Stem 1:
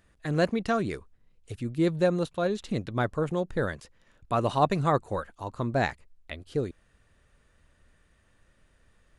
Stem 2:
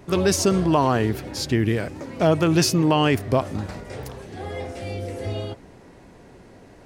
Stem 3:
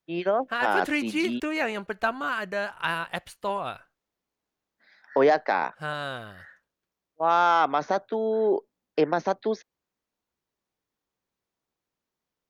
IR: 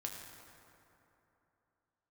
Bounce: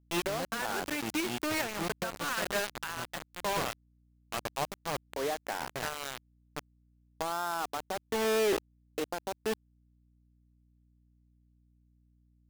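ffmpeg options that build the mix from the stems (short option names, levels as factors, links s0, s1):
-filter_complex "[0:a]volume=0.266,asplit=2[s0][s1];[s1]volume=0.2[s2];[2:a]volume=0.708,asplit=2[s3][s4];[s4]volume=0.1[s5];[s3]acompressor=threshold=0.0398:ratio=2,volume=1[s6];[3:a]atrim=start_sample=2205[s7];[s2][s5]amix=inputs=2:normalize=0[s8];[s8][s7]afir=irnorm=-1:irlink=0[s9];[s0][s6][s9]amix=inputs=3:normalize=0,acrusher=bits=4:mix=0:aa=0.000001,aeval=exprs='val(0)+0.000562*(sin(2*PI*60*n/s)+sin(2*PI*2*60*n/s)/2+sin(2*PI*3*60*n/s)/3+sin(2*PI*4*60*n/s)/4+sin(2*PI*5*60*n/s)/5)':c=same,alimiter=limit=0.0631:level=0:latency=1:release=463"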